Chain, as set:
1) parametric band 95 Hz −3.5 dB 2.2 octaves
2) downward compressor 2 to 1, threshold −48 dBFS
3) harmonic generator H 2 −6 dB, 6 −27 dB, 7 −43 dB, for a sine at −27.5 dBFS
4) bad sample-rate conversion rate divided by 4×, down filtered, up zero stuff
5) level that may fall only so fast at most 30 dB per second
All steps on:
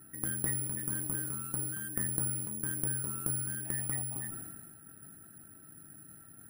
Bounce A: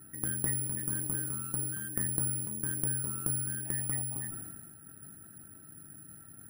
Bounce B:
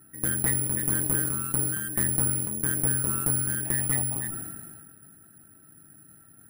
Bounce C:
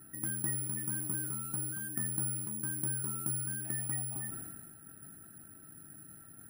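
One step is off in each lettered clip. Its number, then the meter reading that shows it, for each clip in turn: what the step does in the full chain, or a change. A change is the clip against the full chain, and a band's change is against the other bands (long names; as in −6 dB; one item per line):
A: 1, change in integrated loudness +1.5 LU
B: 2, average gain reduction 5.5 dB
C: 3, change in crest factor −5.0 dB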